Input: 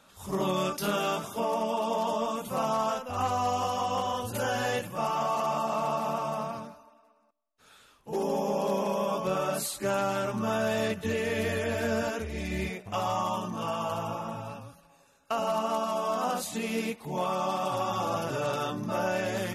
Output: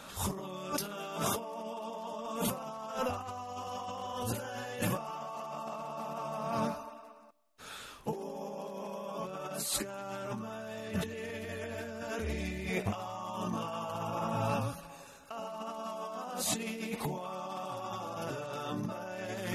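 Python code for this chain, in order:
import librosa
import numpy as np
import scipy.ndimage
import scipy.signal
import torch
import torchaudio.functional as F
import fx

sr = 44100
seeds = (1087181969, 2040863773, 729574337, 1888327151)

y = fx.over_compress(x, sr, threshold_db=-40.0, ratio=-1.0)
y = F.gain(torch.from_numpy(y), 1.5).numpy()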